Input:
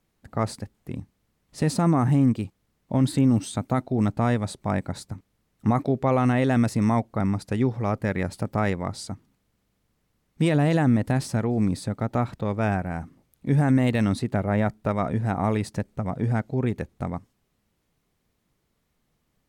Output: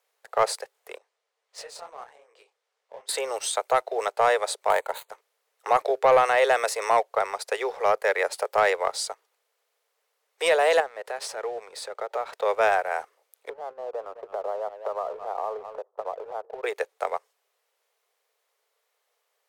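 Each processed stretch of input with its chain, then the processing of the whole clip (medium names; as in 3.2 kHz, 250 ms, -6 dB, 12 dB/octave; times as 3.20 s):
0.98–3.09 s: low-pass 7.4 kHz + compression 4:1, threshold -36 dBFS + detune thickener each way 57 cents
4.70–5.10 s: dead-time distortion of 0.065 ms + Butterworth band-stop 5.3 kHz, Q 2.5 + peaking EQ 920 Hz +8 dB 0.22 oct
10.80–12.33 s: low-pass 4 kHz 6 dB/octave + bass shelf 160 Hz +5.5 dB + compression 16:1, threshold -23 dBFS
13.49–16.64 s: Chebyshev band-pass 130–1200 Hz, order 4 + delay 207 ms -19 dB + compression 10:1, threshold -29 dBFS
whole clip: steep high-pass 430 Hz 72 dB/octave; waveshaping leveller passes 1; trim +4 dB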